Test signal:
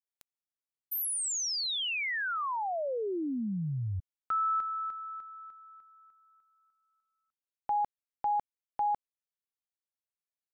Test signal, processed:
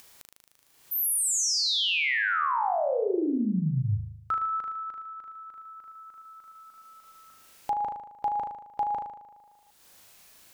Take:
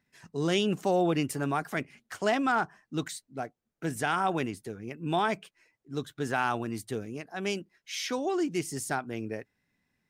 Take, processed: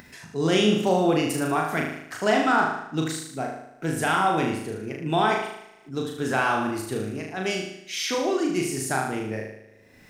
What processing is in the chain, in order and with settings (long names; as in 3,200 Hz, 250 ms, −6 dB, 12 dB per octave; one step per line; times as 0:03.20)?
flutter between parallel walls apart 6.5 metres, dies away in 0.76 s
upward compression 4 to 1, threshold −43 dBFS
level +3.5 dB